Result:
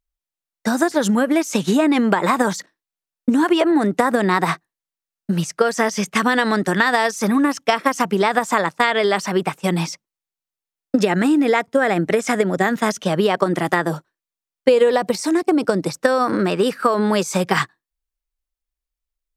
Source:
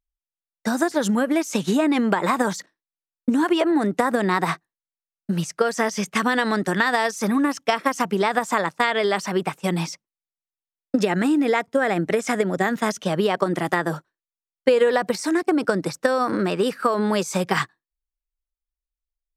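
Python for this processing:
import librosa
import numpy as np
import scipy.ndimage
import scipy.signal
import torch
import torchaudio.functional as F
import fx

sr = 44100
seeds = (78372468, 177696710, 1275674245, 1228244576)

y = fx.dynamic_eq(x, sr, hz=1600.0, q=1.8, threshold_db=-41.0, ratio=4.0, max_db=-6, at=(13.82, 15.97))
y = y * librosa.db_to_amplitude(3.5)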